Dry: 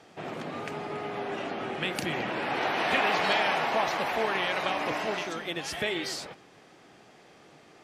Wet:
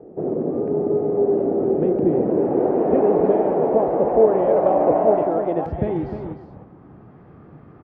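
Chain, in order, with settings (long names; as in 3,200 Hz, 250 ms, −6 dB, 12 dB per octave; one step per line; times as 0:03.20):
high-pass filter 48 Hz
spectral tilt −4 dB per octave
low-pass filter sweep 430 Hz → 1,200 Hz, 0:03.57–0:07.25
parametric band 97 Hz −12 dB 2.6 octaves, from 0:05.66 790 Hz
single-tap delay 306 ms −9 dB
level +9 dB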